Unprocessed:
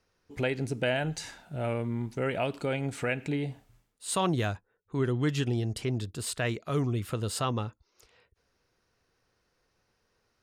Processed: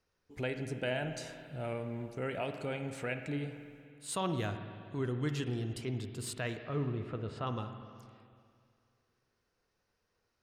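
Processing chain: 6.59–7.47 s: low-pass 2.3 kHz 12 dB/octave; reverberation RT60 2.3 s, pre-delay 48 ms, DRR 7 dB; trim -7 dB

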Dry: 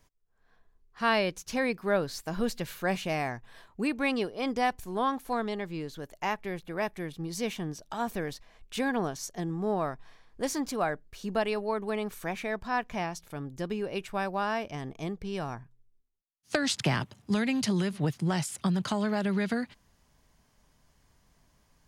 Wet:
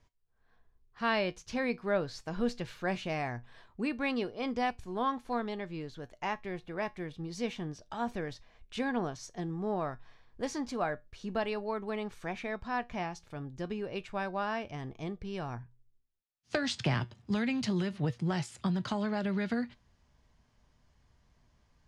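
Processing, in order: low-pass 5.5 kHz 12 dB/octave; peaking EQ 66 Hz +7 dB 1.5 oct; feedback comb 120 Hz, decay 0.19 s, harmonics all, mix 50%

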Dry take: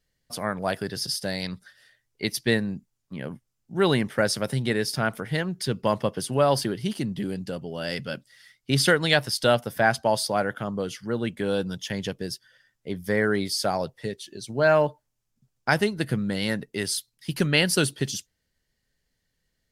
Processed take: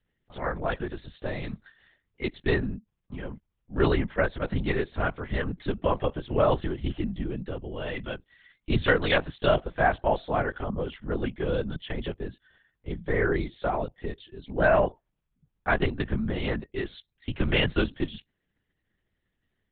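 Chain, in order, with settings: distance through air 170 m; LPC vocoder at 8 kHz whisper; trim -1 dB

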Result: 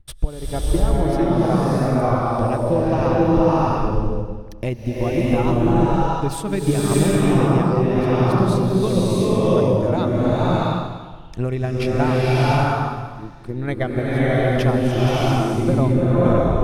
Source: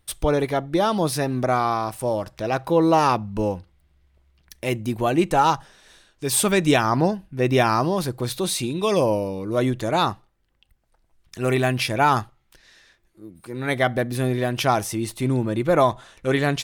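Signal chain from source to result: tape stop on the ending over 0.37 s; treble shelf 2 kHz +7.5 dB; transient shaper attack +10 dB, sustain -7 dB; tilt EQ -4.5 dB/octave; compression 3:1, threshold -10 dBFS, peak gain reduction 16.5 dB; swelling reverb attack 680 ms, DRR -8 dB; trim -10 dB

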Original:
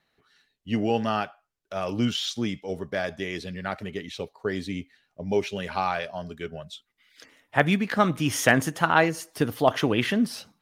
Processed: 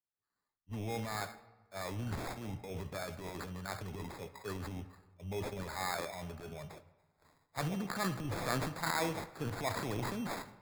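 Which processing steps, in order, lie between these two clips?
fifteen-band graphic EQ 100 Hz +9 dB, 250 Hz -3 dB, 1 kHz +7 dB, 10 kHz +8 dB; transient shaper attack -7 dB, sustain +9 dB; compression 3:1, threshold -31 dBFS, peak gain reduction 13.5 dB; sample-and-hold 15×; on a send at -11.5 dB: reverberation RT60 2.6 s, pre-delay 3 ms; on the sum: three bands expanded up and down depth 70%; trim -6.5 dB

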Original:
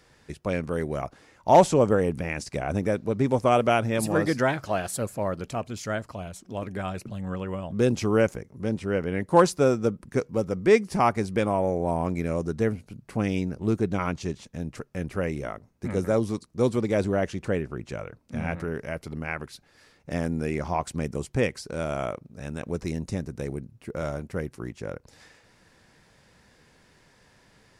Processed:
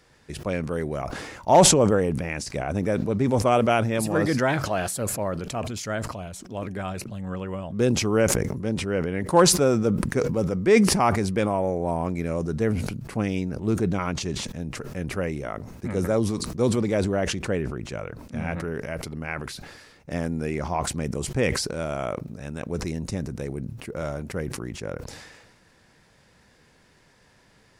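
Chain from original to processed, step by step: decay stretcher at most 40 dB/s

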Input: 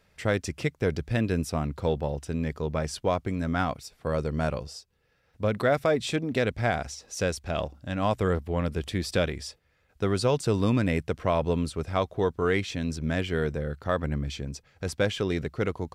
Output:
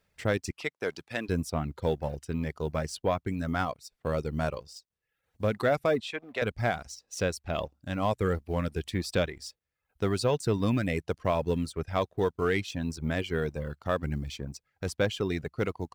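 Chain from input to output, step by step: companding laws mixed up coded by A; 0.51–1.29 s: frequency weighting A; reverb removal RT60 0.69 s; 6.00–6.42 s: three-band isolator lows -20 dB, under 480 Hz, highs -13 dB, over 3.9 kHz; saturation -14.5 dBFS, distortion -24 dB

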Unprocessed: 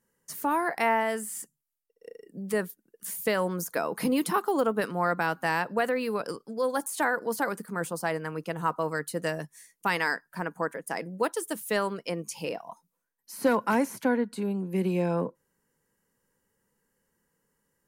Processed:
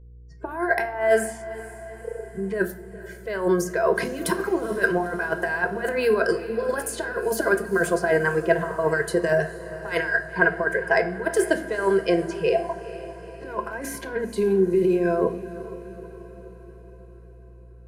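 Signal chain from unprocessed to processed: dynamic bell 1.4 kHz, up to +6 dB, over -40 dBFS, Q 1.1; level-controlled noise filter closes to 860 Hz, open at -24.5 dBFS; spectral noise reduction 30 dB; compressor with a negative ratio -29 dBFS, ratio -0.5; small resonant body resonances 370/670/1600 Hz, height 15 dB, ringing for 50 ms; mains buzz 60 Hz, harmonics 8, -50 dBFS -8 dB/octave; echo that smears into a reverb 459 ms, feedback 58%, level -15 dB; reverberation RT60 0.65 s, pre-delay 6 ms, DRR 9 dB

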